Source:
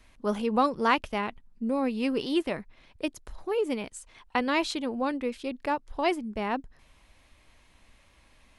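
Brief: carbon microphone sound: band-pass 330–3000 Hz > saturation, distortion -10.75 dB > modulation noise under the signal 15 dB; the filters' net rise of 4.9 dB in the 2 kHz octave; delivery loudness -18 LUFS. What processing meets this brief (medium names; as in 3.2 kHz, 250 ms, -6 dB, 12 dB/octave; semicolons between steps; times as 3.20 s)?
band-pass 330–3000 Hz; peaking EQ 2 kHz +7 dB; saturation -20 dBFS; modulation noise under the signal 15 dB; trim +14 dB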